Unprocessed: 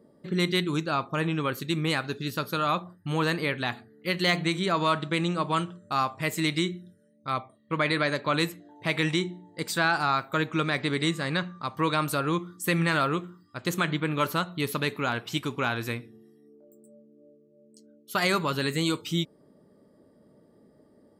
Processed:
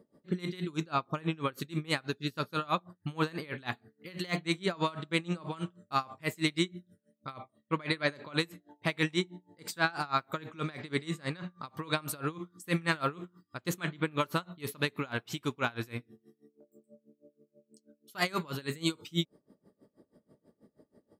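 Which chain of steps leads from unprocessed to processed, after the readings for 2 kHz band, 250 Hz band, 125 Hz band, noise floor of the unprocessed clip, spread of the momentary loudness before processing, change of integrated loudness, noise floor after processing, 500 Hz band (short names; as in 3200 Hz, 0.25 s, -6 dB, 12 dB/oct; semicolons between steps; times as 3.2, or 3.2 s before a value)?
-6.5 dB, -6.0 dB, -6.0 dB, -60 dBFS, 8 LU, -6.5 dB, -80 dBFS, -6.5 dB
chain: dB-linear tremolo 6.2 Hz, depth 25 dB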